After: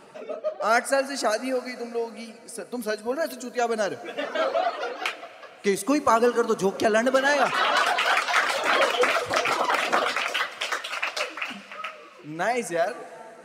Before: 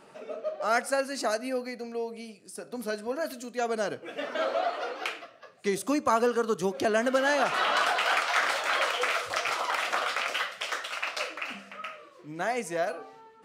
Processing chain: reverb removal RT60 0.67 s; 8.56–10.16 s: peaking EQ 230 Hz +12.5 dB 2.3 oct; plate-style reverb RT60 4 s, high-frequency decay 1×, DRR 14 dB; trim +5 dB

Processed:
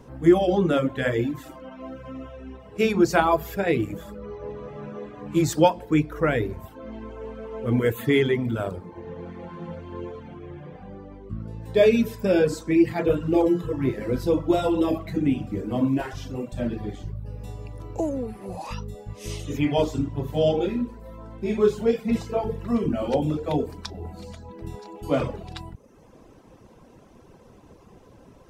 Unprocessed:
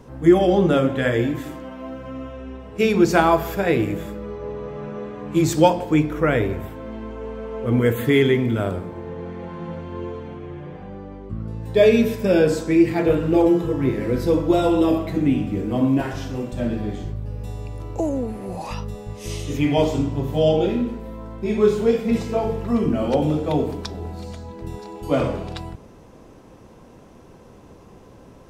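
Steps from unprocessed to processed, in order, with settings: reverb removal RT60 0.77 s; trim -2.5 dB

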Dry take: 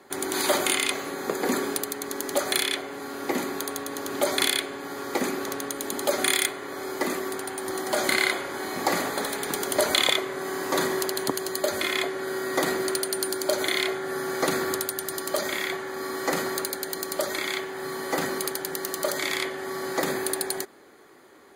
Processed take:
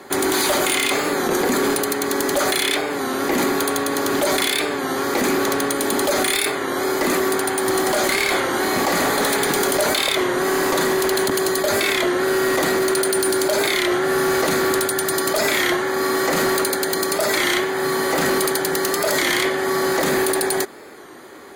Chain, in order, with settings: in parallel at +1 dB: compressor with a negative ratio -29 dBFS, ratio -0.5; on the sum: overload inside the chain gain 19 dB; warped record 33 1/3 rpm, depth 100 cents; trim +4.5 dB

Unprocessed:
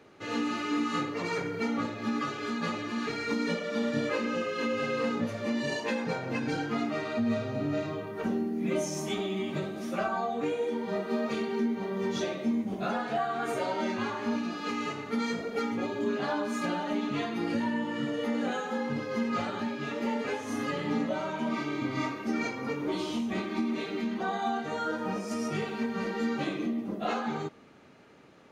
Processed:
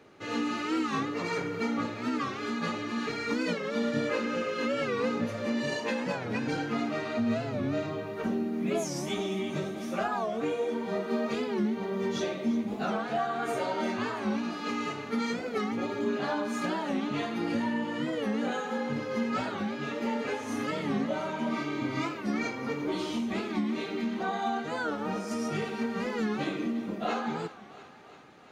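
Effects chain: on a send: thinning echo 345 ms, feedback 70%, level -15 dB; on the sum: warped record 45 rpm, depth 160 cents

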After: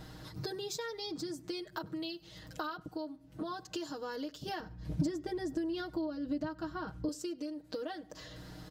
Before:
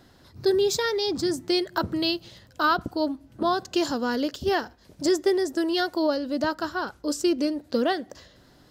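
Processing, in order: hum 60 Hz, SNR 29 dB; comb 6.4 ms, depth 94%; compression 10:1, threshold -39 dBFS, peak gain reduction 25 dB; 4.60–7.09 s: tone controls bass +15 dB, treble -6 dB; echo from a far wall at 17 m, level -25 dB; trim +1.5 dB

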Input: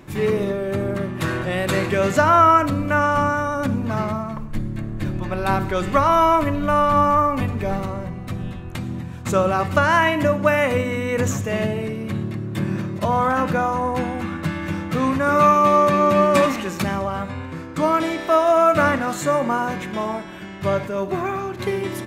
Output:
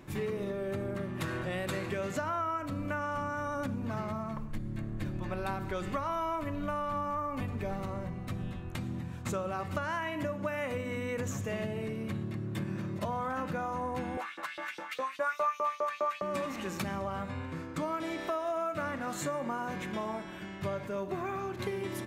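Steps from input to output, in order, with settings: compression 6:1, threshold -24 dBFS, peak gain reduction 13.5 dB; 14.17–16.22 s: LFO high-pass saw up 4.9 Hz 440–4400 Hz; trim -7.5 dB

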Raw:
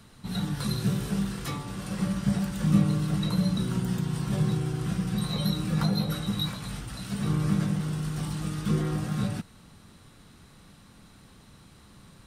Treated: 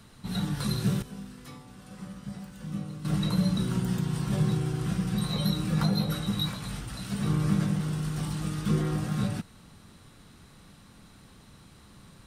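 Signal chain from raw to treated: 1.02–3.05 s: feedback comb 250 Hz, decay 0.81 s, mix 80%

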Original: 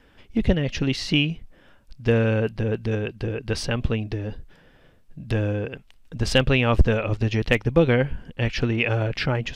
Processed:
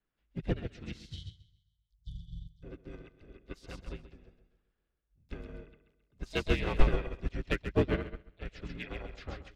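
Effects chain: band-stop 2.3 kHz, Q 29; harmony voices -4 st -4 dB, +5 st -8 dB; spectral selection erased 1.00–2.63 s, 230–3000 Hz; in parallel at -6 dB: wavefolder -10.5 dBFS; on the sum: frequency shift -57 Hz; on a send: feedback delay 133 ms, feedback 42%, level -6 dB; on the sum: upward expansion 2.5:1, over -24 dBFS; trim -7.5 dB

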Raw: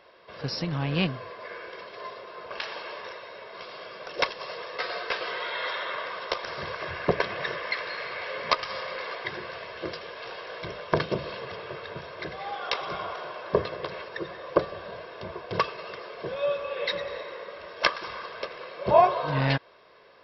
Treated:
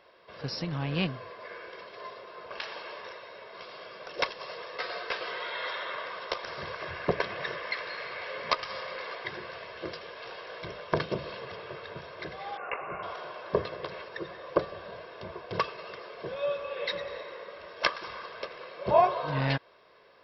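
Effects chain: 12.57–13.03 s: Chebyshev low-pass 2.8 kHz, order 10; trim -3.5 dB

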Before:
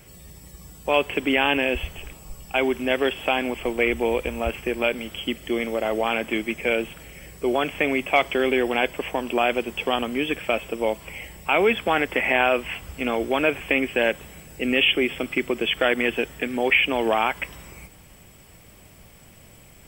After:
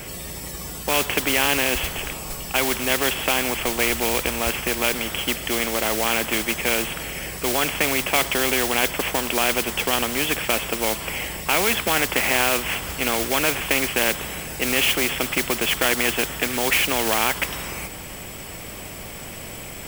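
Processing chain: modulation noise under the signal 19 dB; spectrum-flattening compressor 2:1; trim +1.5 dB

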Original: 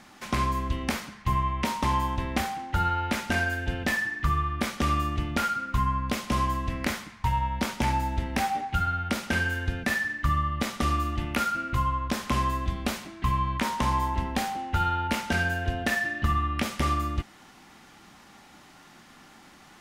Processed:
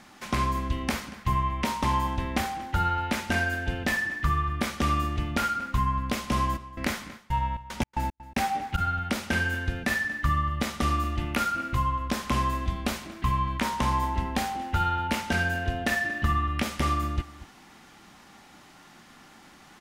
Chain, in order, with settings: 6.56–8.77 s: trance gate "x..xxx.xx.x." 113 bpm -60 dB; echo from a far wall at 40 m, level -17 dB

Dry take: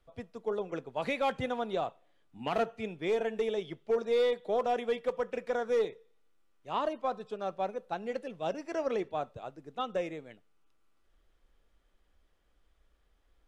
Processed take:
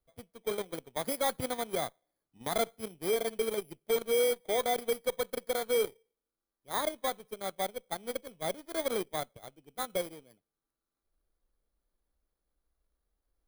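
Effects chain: bit-reversed sample order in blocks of 16 samples; Chebyshev shaper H 4 -28 dB, 7 -20 dB, 8 -34 dB, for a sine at -21 dBFS

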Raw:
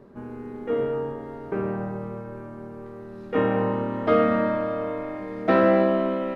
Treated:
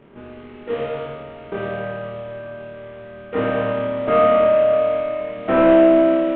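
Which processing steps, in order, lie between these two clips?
CVSD coder 16 kbps; flutter echo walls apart 4.7 m, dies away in 0.79 s

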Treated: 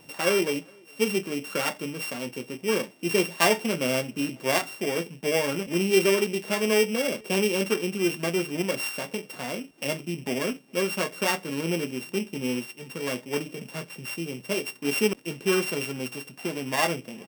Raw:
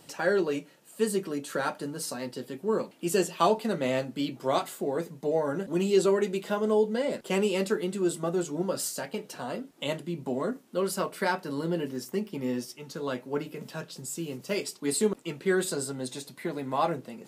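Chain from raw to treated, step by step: sorted samples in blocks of 16 samples; echo from a far wall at 71 m, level -30 dB; trim +2 dB

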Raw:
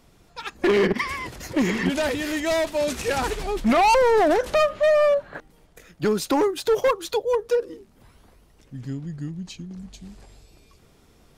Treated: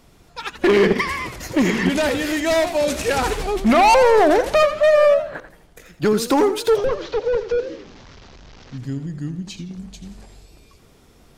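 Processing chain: 6.76–8.78 s: one-bit delta coder 32 kbps, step -41.5 dBFS; modulated delay 84 ms, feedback 36%, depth 159 cents, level -11.5 dB; trim +4 dB

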